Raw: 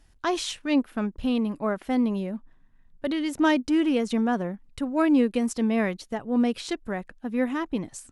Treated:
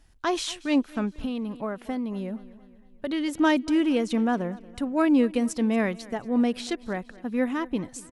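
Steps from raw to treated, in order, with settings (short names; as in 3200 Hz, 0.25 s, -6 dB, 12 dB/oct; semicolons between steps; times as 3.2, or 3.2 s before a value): on a send: feedback echo 0.232 s, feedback 49%, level -21 dB; 1.18–3.13 on the sum: compressor 6:1, threshold -27 dBFS, peak gain reduction 7.5 dB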